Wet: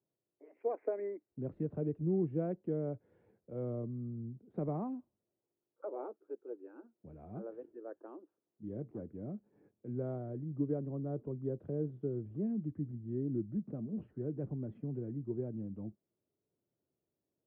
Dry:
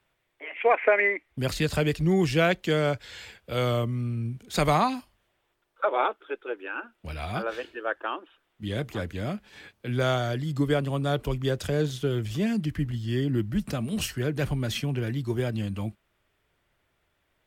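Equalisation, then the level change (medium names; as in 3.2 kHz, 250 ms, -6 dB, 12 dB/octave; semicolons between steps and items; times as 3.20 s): Butterworth band-pass 210 Hz, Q 0.71; distance through air 470 m; bass shelf 240 Hz -12 dB; -2.0 dB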